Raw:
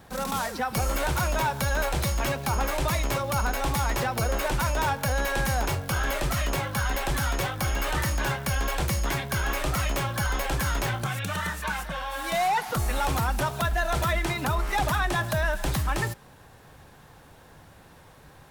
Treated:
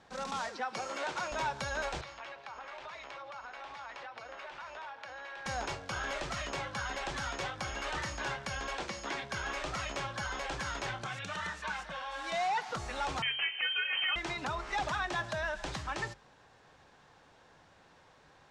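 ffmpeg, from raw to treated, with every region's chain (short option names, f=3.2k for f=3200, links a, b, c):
-filter_complex "[0:a]asettb=1/sr,asplit=3[a][b][c];[a]atrim=end=0.494[d];[b]atrim=start=0.49:end=1.32,asetpts=PTS-STARTPTS,afade=t=in:d=0.004:c=qsin,afade=t=out:st=0.826:d=0.004:c=qsin,highpass=230,highshelf=f=10k:g=-8[e];[c]atrim=start=1.316[f];[d][e]acrossfade=d=0.004:c1=hsin:c2=qsin[g];[g][f]acrossfade=d=0.004:c1=qsin:c2=hsin,asettb=1/sr,asplit=3[h][i][j];[h]atrim=end=2.014[k];[i]atrim=start=2.01:end=5.46,asetpts=PTS-STARTPTS,afade=t=in:d=0.004:c=qsin,afade=t=out:st=3.446:d=0.004:c=qsin,acrossover=split=530 4200:gain=0.141 1 0.141[l][m][n];[l][m][n]amix=inputs=3:normalize=0,acompressor=threshold=-32dB:ratio=5:attack=3.2:release=140:knee=1:detection=peak,tremolo=f=220:d=0.519[o];[j]atrim=start=5.456[p];[k][o]acrossfade=d=0.004:c1=hsin:c2=qsin[q];[q][p]acrossfade=d=0.004:c1=qsin:c2=hsin,asettb=1/sr,asplit=3[r][s][t];[r]atrim=end=8.734[u];[s]atrim=start=8.73:end=9.22,asetpts=PTS-STARTPTS,afade=t=in:d=0.004:c=qsin,afade=t=out:st=0.486:d=0.004:c=qsin,acrossover=split=6400[v][w];[w]acompressor=threshold=-40dB:ratio=4:attack=1:release=60[x];[v][x]amix=inputs=2:normalize=0,lowshelf=f=170:t=q:w=1.5:g=-8.5[y];[t]atrim=start=9.216[z];[u][y]acrossfade=d=0.004:c1=hsin:c2=qsin[aa];[aa][z]acrossfade=d=0.004:c1=qsin:c2=hsin,asettb=1/sr,asplit=3[ab][ac][ad];[ab]atrim=end=13.224[ae];[ac]atrim=start=13.22:end=14.16,asetpts=PTS-STARTPTS,afade=t=in:d=0.004:c=qsin,afade=t=out:st=0.936:d=0.004:c=qsin,highpass=53,asplit=2[af][ag];[ag]adelay=28,volume=-13.5dB[ah];[af][ah]amix=inputs=2:normalize=0,atrim=end_sample=41454,lowpass=f=2.7k:t=q:w=0.5098,lowpass=f=2.7k:t=q:w=0.6013,lowpass=f=2.7k:t=q:w=0.9,lowpass=f=2.7k:t=q:w=2.563,afreqshift=-3200[ai];[ad]atrim=start=14.156[aj];[ae][ai]acrossfade=d=0.004:c1=hsin:c2=qsin[ak];[ak][aj]acrossfade=d=0.004:c1=qsin:c2=hsin,lowpass=f=6.8k:w=0.5412,lowpass=f=6.8k:w=1.3066,lowshelf=f=230:g=-11,bandreject=f=46.14:t=h:w=4,bandreject=f=92.28:t=h:w=4,bandreject=f=138.42:t=h:w=4,volume=-6.5dB"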